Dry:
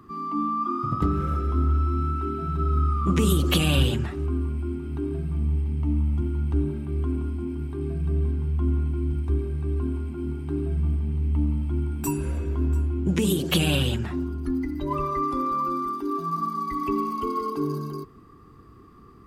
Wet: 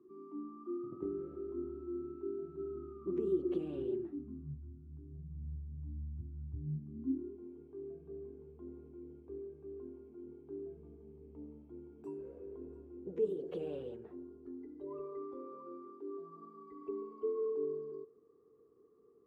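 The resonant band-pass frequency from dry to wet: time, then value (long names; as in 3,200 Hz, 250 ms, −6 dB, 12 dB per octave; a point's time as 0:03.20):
resonant band-pass, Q 11
0:04.02 370 Hz
0:04.63 110 Hz
0:06.55 110 Hz
0:07.41 450 Hz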